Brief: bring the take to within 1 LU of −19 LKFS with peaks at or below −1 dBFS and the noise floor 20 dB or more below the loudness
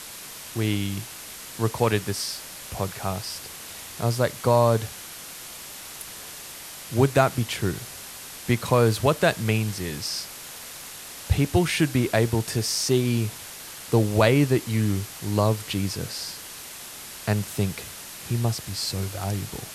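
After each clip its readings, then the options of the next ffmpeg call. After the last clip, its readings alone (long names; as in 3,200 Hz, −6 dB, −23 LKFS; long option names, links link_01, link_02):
background noise floor −40 dBFS; target noise floor −45 dBFS; integrated loudness −25.0 LKFS; sample peak −3.5 dBFS; target loudness −19.0 LKFS
→ -af "afftdn=noise_reduction=6:noise_floor=-40"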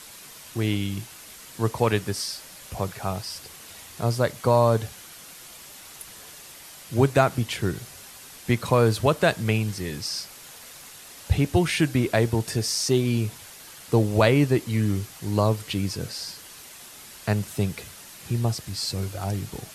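background noise floor −45 dBFS; integrated loudness −25.0 LKFS; sample peak −3.5 dBFS; target loudness −19.0 LKFS
→ -af "volume=6dB,alimiter=limit=-1dB:level=0:latency=1"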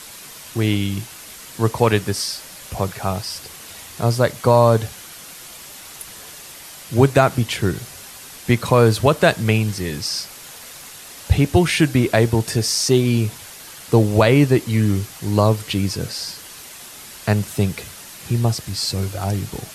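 integrated loudness −19.0 LKFS; sample peak −1.0 dBFS; background noise floor −39 dBFS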